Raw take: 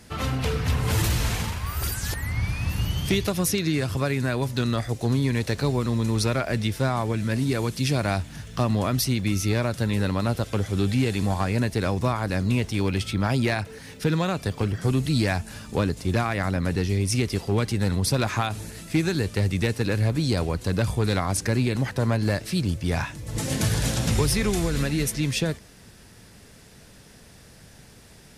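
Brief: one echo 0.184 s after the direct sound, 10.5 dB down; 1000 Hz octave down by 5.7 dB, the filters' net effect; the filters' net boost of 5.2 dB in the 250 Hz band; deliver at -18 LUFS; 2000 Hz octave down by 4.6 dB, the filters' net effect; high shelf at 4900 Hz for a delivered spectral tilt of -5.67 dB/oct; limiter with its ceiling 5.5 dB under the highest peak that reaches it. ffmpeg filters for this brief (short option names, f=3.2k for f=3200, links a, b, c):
-af "equalizer=f=250:t=o:g=7,equalizer=f=1k:t=o:g=-7.5,equalizer=f=2k:t=o:g=-4.5,highshelf=f=4.9k:g=4,alimiter=limit=-14dB:level=0:latency=1,aecho=1:1:184:0.299,volume=6.5dB"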